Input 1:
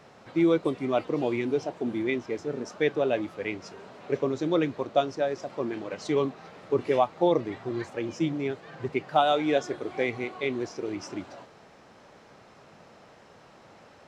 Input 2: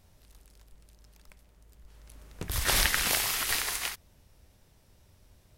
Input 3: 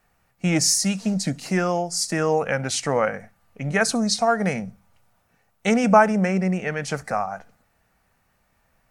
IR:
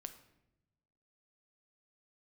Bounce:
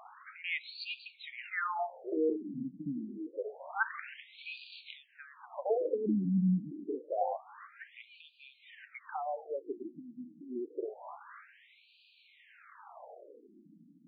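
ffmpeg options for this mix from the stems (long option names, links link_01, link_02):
-filter_complex "[0:a]acompressor=threshold=-24dB:ratio=6,volume=1.5dB[link_01];[1:a]tiltshelf=frequency=1400:gain=-6.5,acompressor=threshold=-31dB:ratio=2.5,adelay=1050,volume=-3.5dB[link_02];[2:a]volume=-7.5dB,asplit=3[link_03][link_04][link_05];[link_04]volume=-4.5dB[link_06];[link_05]apad=whole_len=292054[link_07];[link_02][link_07]sidechaincompress=threshold=-31dB:ratio=8:attack=16:release=140[link_08];[link_01][link_08]amix=inputs=2:normalize=0,equalizer=frequency=790:width=0.68:gain=5,acompressor=threshold=-33dB:ratio=6,volume=0dB[link_09];[3:a]atrim=start_sample=2205[link_10];[link_06][link_10]afir=irnorm=-1:irlink=0[link_11];[link_03][link_09][link_11]amix=inputs=3:normalize=0,afftfilt=real='re*between(b*sr/1024,220*pow(3400/220,0.5+0.5*sin(2*PI*0.27*pts/sr))/1.41,220*pow(3400/220,0.5+0.5*sin(2*PI*0.27*pts/sr))*1.41)':imag='im*between(b*sr/1024,220*pow(3400/220,0.5+0.5*sin(2*PI*0.27*pts/sr))/1.41,220*pow(3400/220,0.5+0.5*sin(2*PI*0.27*pts/sr))*1.41)':win_size=1024:overlap=0.75"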